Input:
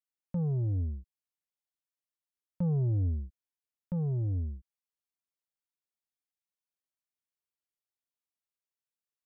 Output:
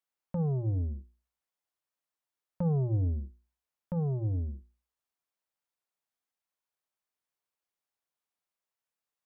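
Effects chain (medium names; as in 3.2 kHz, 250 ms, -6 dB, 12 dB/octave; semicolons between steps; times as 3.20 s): peaking EQ 880 Hz +7.5 dB 2.3 oct; hum notches 60/120/180/240/300/360 Hz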